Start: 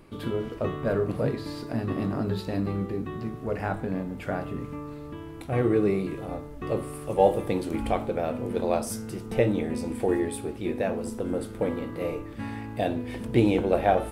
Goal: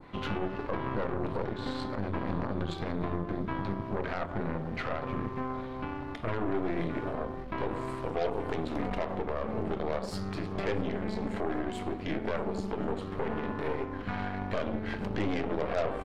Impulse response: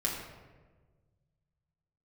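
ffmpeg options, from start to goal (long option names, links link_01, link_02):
-filter_complex "[0:a]acrossover=split=630|2200[link_01][link_02][link_03];[link_02]acontrast=89[link_04];[link_01][link_04][link_03]amix=inputs=3:normalize=0,highshelf=frequency=6700:width_type=q:width=1.5:gain=-13.5,asetrate=38808,aresample=44100,asplit=2[link_05][link_06];[link_06]acompressor=threshold=-32dB:ratio=6,volume=-1dB[link_07];[link_05][link_07]amix=inputs=2:normalize=0,bandreject=frequency=60:width_type=h:width=6,bandreject=frequency=120:width_type=h:width=6,bandreject=frequency=180:width_type=h:width=6,bandreject=frequency=240:width_type=h:width=6,bandreject=frequency=300:width_type=h:width=6,bandreject=frequency=360:width_type=h:width=6,bandreject=frequency=420:width_type=h:width=6,bandreject=frequency=480:width_type=h:width=6,bandreject=frequency=540:width_type=h:width=6,aecho=1:1:637:0.0668,aeval=exprs='0.668*(cos(1*acos(clip(val(0)/0.668,-1,1)))-cos(1*PI/2))+0.0596*(cos(3*acos(clip(val(0)/0.668,-1,1)))-cos(3*PI/2))+0.0531*(cos(6*acos(clip(val(0)/0.668,-1,1)))-cos(6*PI/2))+0.0133*(cos(7*acos(clip(val(0)/0.668,-1,1)))-cos(7*PI/2))+0.106*(cos(8*acos(clip(val(0)/0.668,-1,1)))-cos(8*PI/2))':channel_layout=same,adynamicequalizer=threshold=0.00562:dfrequency=2800:dqfactor=0.73:tfrequency=2800:tqfactor=0.73:attack=5:release=100:ratio=0.375:range=2:mode=cutabove:tftype=bell,alimiter=limit=-20.5dB:level=0:latency=1:release=101"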